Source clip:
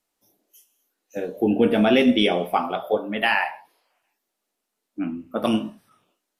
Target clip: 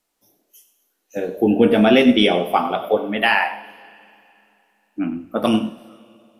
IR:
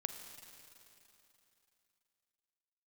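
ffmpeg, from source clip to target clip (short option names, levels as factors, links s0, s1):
-filter_complex "[0:a]asplit=2[s0][s1];[1:a]atrim=start_sample=2205,asetrate=48510,aresample=44100,adelay=98[s2];[s1][s2]afir=irnorm=-1:irlink=0,volume=0.251[s3];[s0][s3]amix=inputs=2:normalize=0,volume=1.58"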